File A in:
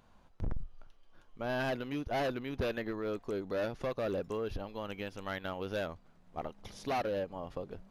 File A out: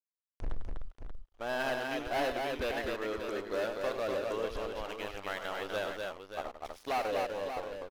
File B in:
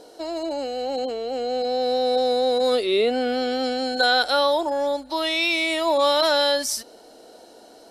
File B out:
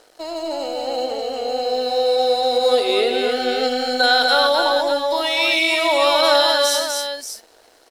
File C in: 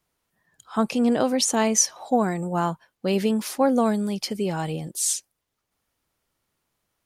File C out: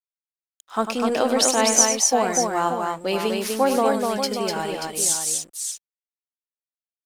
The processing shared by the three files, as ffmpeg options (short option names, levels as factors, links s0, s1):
-af "aeval=exprs='sgn(val(0))*max(abs(val(0))-0.00447,0)':c=same,equalizer=f=140:t=o:w=1.8:g=-14.5,aecho=1:1:99|248|583:0.355|0.668|0.398,volume=1.5"